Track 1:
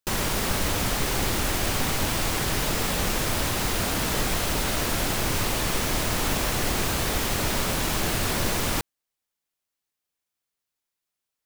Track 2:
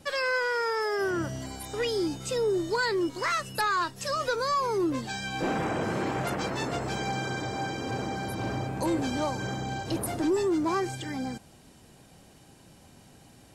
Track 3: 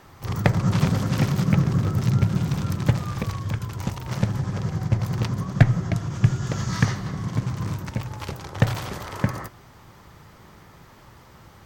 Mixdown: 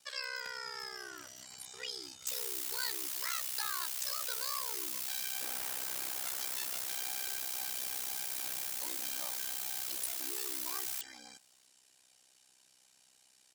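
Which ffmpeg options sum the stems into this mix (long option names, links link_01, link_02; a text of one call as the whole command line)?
ffmpeg -i stem1.wav -i stem2.wav -i stem3.wav -filter_complex "[0:a]adelay=2200,volume=-7dB[link_01];[1:a]lowpass=7700,volume=2.5dB[link_02];[2:a]volume=-15dB[link_03];[link_01][link_02][link_03]amix=inputs=3:normalize=0,aderivative,aeval=exprs='val(0)*sin(2*PI*32*n/s)':channel_layout=same" out.wav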